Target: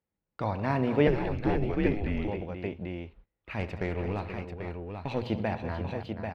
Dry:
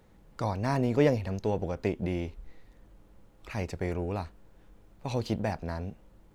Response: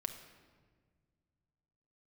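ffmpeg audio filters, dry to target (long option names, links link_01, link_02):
-filter_complex "[0:a]highpass=47,highshelf=frequency=4400:width_type=q:width=1.5:gain=-14,bandreject=frequency=60:width_type=h:width=6,bandreject=frequency=120:width_type=h:width=6,agate=range=-28dB:threshold=-47dB:ratio=16:detection=peak,aecho=1:1:69|118|202|482|790:0.188|0.126|0.211|0.335|0.531,asettb=1/sr,asplit=3[link_01][link_02][link_03];[link_01]atrim=end=1.074[link_04];[link_02]atrim=start=1.07:end=2.28,asetpts=PTS-STARTPTS,afade=type=in:duration=0.004:curve=qsin,afade=type=out:start_time=1.206:duration=0.004:curve=qsin,afreqshift=-110[link_05];[link_03]atrim=start=2.276[link_06];[link_04][link_05]acrossfade=duration=0.004:curve1=hsin:curve2=qsin[link_07];[link_07][link_06]acrossfade=duration=0.004:curve1=qsin:curve2=hsin,asettb=1/sr,asplit=3[link_08][link_09][link_10];[link_08]atrim=end=3.594[link_11];[link_09]atrim=start=3.59:end=5.24,asetpts=PTS-STARTPTS,afade=type=in:duration=0.004:curve=qsin,afade=type=out:start_time=1.646:duration=0.004:curve=qsin,aeval=exprs='0.168*(cos(1*acos(clip(val(0)/0.168,-1,1)))-cos(1*PI/2))+0.00841*(cos(8*acos(clip(val(0)/0.168,-1,1)))-cos(8*PI/2))':channel_layout=same[link_12];[link_10]atrim=start=5.236[link_13];[link_11][link_12]acrossfade=duration=0.004:curve1=hsin:curve2=qsin[link_14];[link_14][link_13]acrossfade=duration=0.004:curve1=qsin:curve2=hsin"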